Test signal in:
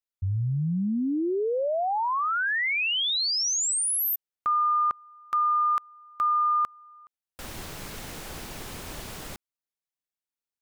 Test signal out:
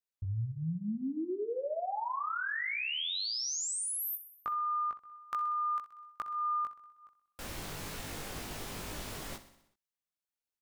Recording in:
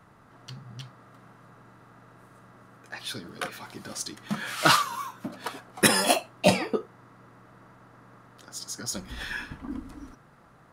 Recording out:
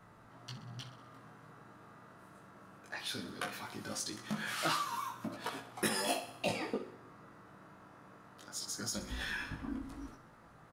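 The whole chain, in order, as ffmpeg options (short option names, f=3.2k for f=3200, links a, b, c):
-af "acompressor=threshold=-36dB:ratio=2.5:attack=52:release=115:knee=1:detection=rms,flanger=delay=18:depth=2.1:speed=0.19,aecho=1:1:63|126|189|252|315|378:0.211|0.127|0.0761|0.0457|0.0274|0.0164"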